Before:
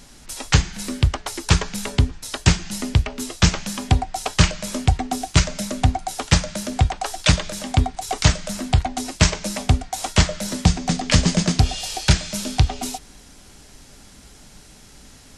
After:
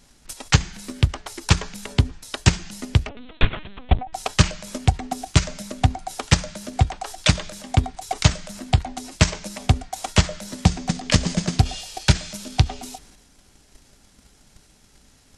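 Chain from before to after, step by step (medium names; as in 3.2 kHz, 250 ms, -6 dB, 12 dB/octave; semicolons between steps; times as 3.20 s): 3.09–4.13 s: LPC vocoder at 8 kHz pitch kept; transient shaper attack +11 dB, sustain +7 dB; trim -10.5 dB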